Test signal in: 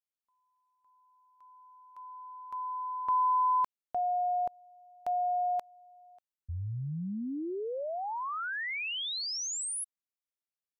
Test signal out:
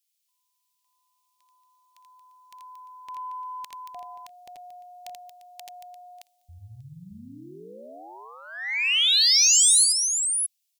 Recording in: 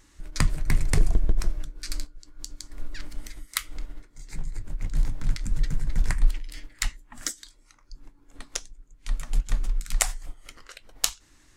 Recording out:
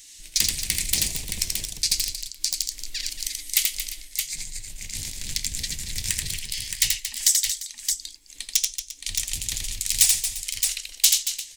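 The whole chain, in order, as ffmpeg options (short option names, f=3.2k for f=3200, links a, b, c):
-af "aeval=exprs='0.0944*(abs(mod(val(0)/0.0944+3,4)-2)-1)':c=same,aecho=1:1:83|229|347|620:0.631|0.282|0.126|0.473,aexciter=amount=9.6:drive=8.7:freq=2.1k,volume=-10.5dB"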